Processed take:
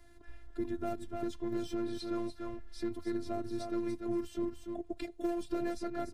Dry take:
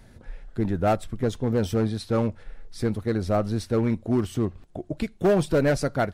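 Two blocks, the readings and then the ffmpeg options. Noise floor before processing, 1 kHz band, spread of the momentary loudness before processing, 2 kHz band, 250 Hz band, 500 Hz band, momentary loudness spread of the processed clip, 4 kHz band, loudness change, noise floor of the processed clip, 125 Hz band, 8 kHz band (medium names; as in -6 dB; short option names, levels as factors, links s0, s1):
-51 dBFS, -12.5 dB, 9 LU, -16.0 dB, -10.0 dB, -13.0 dB, 6 LU, -10.5 dB, -12.5 dB, -55 dBFS, -23.0 dB, -13.5 dB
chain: -filter_complex "[0:a]aecho=1:1:291:0.355,afftfilt=real='hypot(re,im)*cos(PI*b)':imag='0':win_size=512:overlap=0.75,acrossover=split=87|340|5700[s0][s1][s2][s3];[s0]acompressor=threshold=0.0126:ratio=4[s4];[s1]acompressor=threshold=0.0251:ratio=4[s5];[s2]acompressor=threshold=0.0141:ratio=4[s6];[s3]acompressor=threshold=0.00158:ratio=4[s7];[s4][s5][s6][s7]amix=inputs=4:normalize=0,volume=0.668"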